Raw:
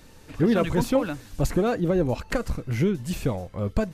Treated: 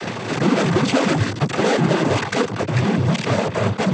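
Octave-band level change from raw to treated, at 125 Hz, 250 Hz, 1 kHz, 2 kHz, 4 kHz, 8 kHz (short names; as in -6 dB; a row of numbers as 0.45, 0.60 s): +7.0, +5.0, +10.0, +11.5, +13.5, +8.5 dB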